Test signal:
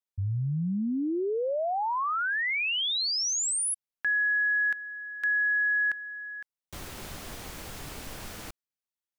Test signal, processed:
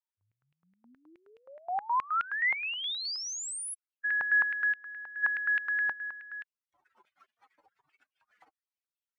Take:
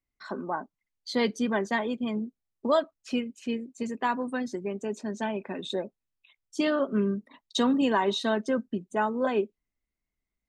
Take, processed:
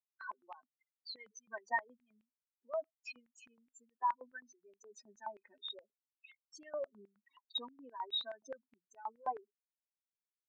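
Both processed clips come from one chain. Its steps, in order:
expanding power law on the bin magnitudes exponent 3.3
high-pass on a step sequencer 9.5 Hz 870–2,700 Hz
level −8.5 dB

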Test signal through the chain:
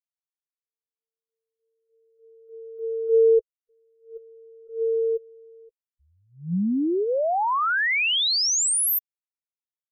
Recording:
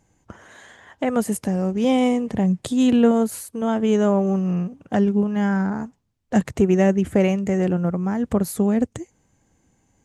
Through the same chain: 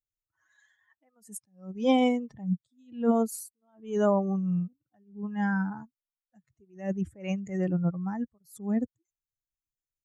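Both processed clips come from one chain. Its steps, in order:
spectral dynamics exaggerated over time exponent 2
level that may rise only so fast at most 160 dB per second

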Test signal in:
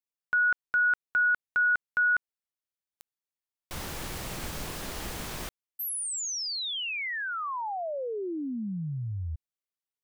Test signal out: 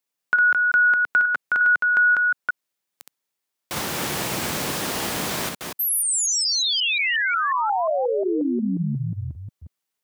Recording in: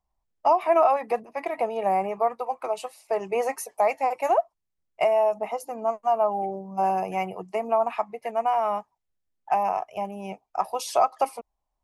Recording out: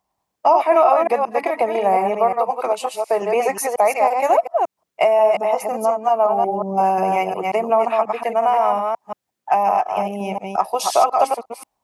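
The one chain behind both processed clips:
delay that plays each chunk backwards 179 ms, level −4.5 dB
high-pass filter 150 Hz 12 dB per octave
in parallel at +3 dB: downward compressor, threshold −30 dBFS
on the sum: level +3 dB

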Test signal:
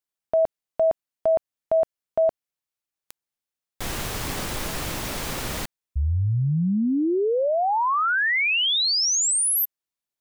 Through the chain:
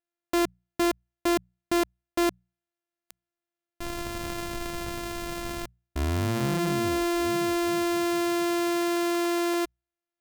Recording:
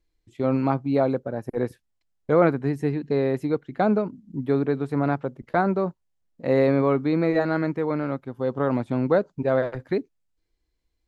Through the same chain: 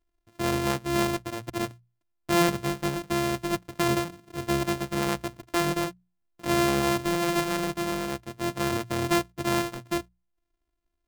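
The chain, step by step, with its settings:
samples sorted by size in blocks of 128 samples
mains-hum notches 60/120/180 Hz
level −4 dB

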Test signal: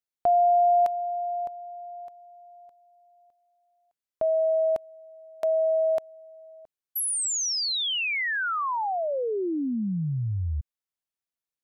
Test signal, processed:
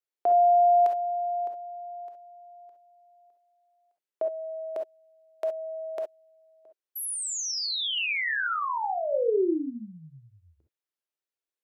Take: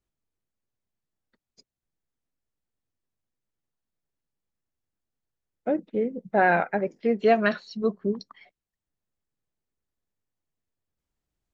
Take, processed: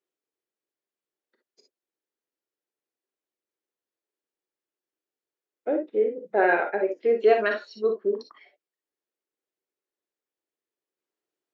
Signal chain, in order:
high-pass with resonance 380 Hz, resonance Q 3.9
parametric band 2,100 Hz +5 dB 2.7 octaves
reverb whose tail is shaped and stops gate 80 ms rising, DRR 4 dB
level −7.5 dB

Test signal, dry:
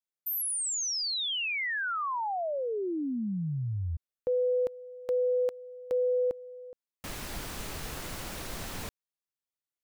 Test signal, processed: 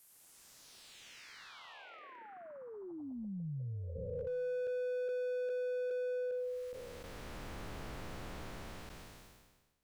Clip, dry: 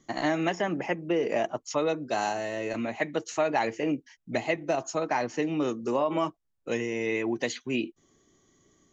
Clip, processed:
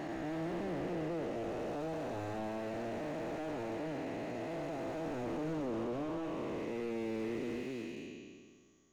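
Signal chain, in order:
spectrum smeared in time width 883 ms
slew-rate limiting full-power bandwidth 11 Hz
level −2.5 dB

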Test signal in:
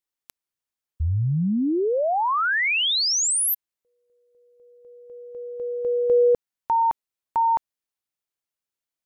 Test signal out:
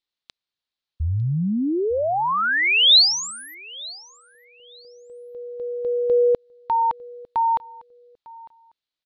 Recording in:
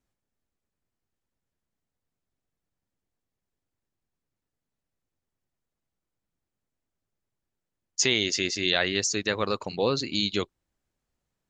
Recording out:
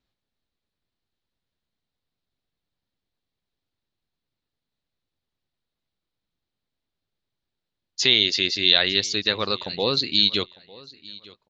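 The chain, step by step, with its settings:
low-pass with resonance 4,000 Hz, resonance Q 3.6
repeating echo 902 ms, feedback 22%, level −22 dB

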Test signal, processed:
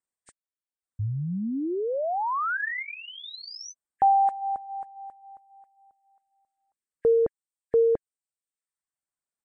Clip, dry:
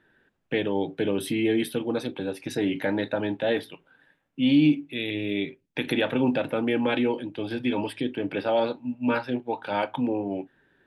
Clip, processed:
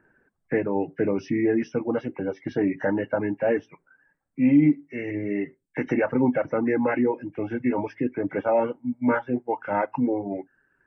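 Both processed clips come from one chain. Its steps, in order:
hearing-aid frequency compression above 1,600 Hz 1.5 to 1
flat-topped bell 4,000 Hz −13 dB
reverb reduction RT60 0.8 s
level +3 dB

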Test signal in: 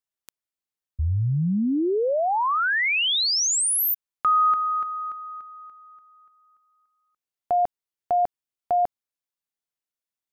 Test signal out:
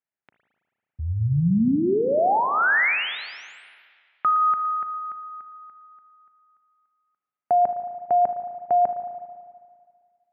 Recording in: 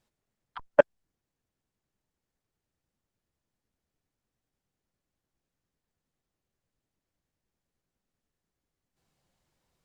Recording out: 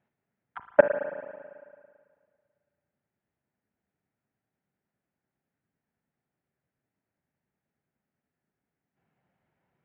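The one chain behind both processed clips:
loudspeaker in its box 130–2,200 Hz, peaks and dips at 320 Hz −4 dB, 500 Hz −5 dB, 1,100 Hz −7 dB
spring reverb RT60 1.9 s, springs 36/55 ms, chirp 80 ms, DRR 7.5 dB
level +4 dB

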